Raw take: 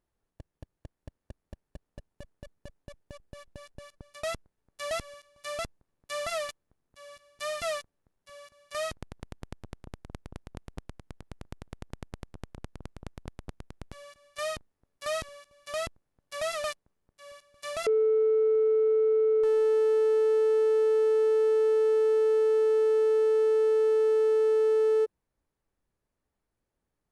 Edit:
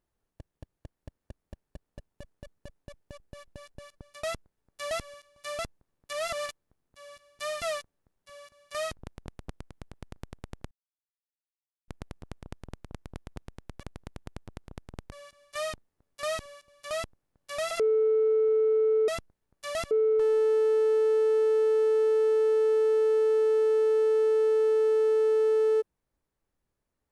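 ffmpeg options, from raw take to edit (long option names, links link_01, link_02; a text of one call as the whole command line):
ffmpeg -i in.wav -filter_complex "[0:a]asplit=10[link_01][link_02][link_03][link_04][link_05][link_06][link_07][link_08][link_09][link_10];[link_01]atrim=end=6.132[link_11];[link_02]atrim=start=6.128:end=6.462,asetpts=PTS-STARTPTS,areverse[link_12];[link_03]atrim=start=6.458:end=8.992[link_13];[link_04]atrim=start=10.278:end=12,asetpts=PTS-STARTPTS,afade=type=out:start_time=1.718:duration=0.004:curve=hsin,apad=pad_dur=1.17[link_14];[link_05]atrim=start=12:end=13.952,asetpts=PTS-STARTPTS,afade=type=in:duration=0.004:curve=hsin[link_15];[link_06]atrim=start=8.988:end=10.282[link_16];[link_07]atrim=start=13.948:end=16.542[link_17];[link_08]atrim=start=17.778:end=19.152[link_18];[link_09]atrim=start=4.238:end=5.072[link_19];[link_10]atrim=start=19.148[link_20];[link_11][link_12]acrossfade=duration=0.004:curve1=hsin:curve2=hsin[link_21];[link_21][link_13]acrossfade=duration=0.004:curve1=hsin:curve2=hsin[link_22];[link_14][link_15]concat=n=2:v=0:a=1[link_23];[link_22][link_23]acrossfade=duration=0.004:curve1=hsin:curve2=hsin[link_24];[link_24][link_16]acrossfade=duration=0.004:curve1=hsin:curve2=hsin[link_25];[link_25][link_17]acrossfade=duration=0.004:curve1=hsin:curve2=hsin[link_26];[link_26][link_18]acrossfade=duration=0.004:curve1=hsin:curve2=hsin[link_27];[link_27][link_19]acrossfade=duration=0.004:curve1=hsin:curve2=hsin[link_28];[link_28][link_20]acrossfade=duration=0.004:curve1=hsin:curve2=hsin" out.wav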